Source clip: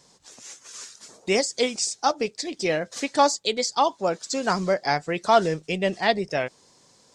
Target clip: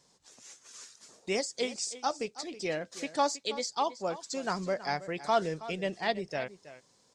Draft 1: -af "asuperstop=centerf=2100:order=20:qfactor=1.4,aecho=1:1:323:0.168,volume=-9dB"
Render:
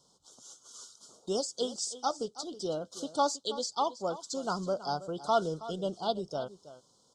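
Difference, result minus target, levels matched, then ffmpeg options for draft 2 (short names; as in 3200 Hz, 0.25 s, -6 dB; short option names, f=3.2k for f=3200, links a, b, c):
2000 Hz band -11.5 dB
-af "aecho=1:1:323:0.168,volume=-9dB"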